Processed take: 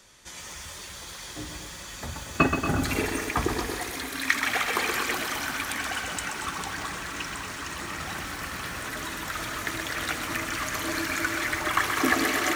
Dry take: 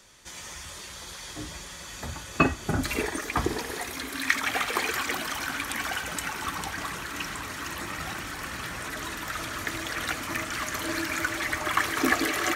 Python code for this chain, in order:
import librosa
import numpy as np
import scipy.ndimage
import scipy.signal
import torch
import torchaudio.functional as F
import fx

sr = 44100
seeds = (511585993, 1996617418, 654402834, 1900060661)

y = fx.cheby1_lowpass(x, sr, hz=8900.0, order=2, at=(5.73, 8.1))
y = y + 10.0 ** (-10.5 / 20.0) * np.pad(y, (int(232 * sr / 1000.0), 0))[:len(y)]
y = fx.echo_crushed(y, sr, ms=127, feedback_pct=55, bits=7, wet_db=-6.5)